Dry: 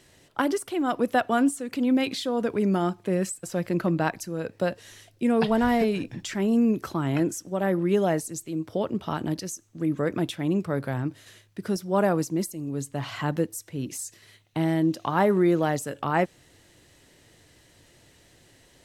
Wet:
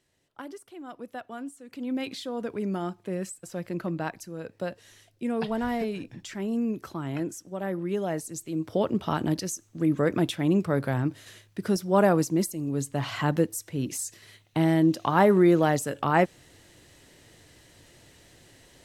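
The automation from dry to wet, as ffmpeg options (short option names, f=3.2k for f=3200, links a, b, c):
-af "volume=2dB,afade=t=in:st=1.55:d=0.52:silence=0.334965,afade=t=in:st=8.07:d=0.74:silence=0.375837"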